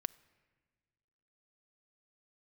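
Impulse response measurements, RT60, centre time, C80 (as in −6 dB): non-exponential decay, 2 ms, 22.5 dB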